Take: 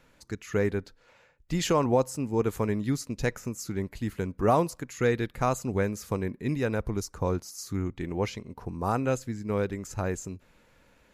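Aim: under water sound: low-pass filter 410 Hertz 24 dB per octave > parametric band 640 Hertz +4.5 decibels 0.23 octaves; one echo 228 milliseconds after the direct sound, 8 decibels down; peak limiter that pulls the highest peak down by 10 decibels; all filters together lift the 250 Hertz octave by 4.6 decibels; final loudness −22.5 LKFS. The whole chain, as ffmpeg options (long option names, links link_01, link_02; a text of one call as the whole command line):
ffmpeg -i in.wav -af "equalizer=frequency=250:width_type=o:gain=6,alimiter=limit=-20dB:level=0:latency=1,lowpass=frequency=410:width=0.5412,lowpass=frequency=410:width=1.3066,equalizer=frequency=640:width_type=o:width=0.23:gain=4.5,aecho=1:1:228:0.398,volume=9.5dB" out.wav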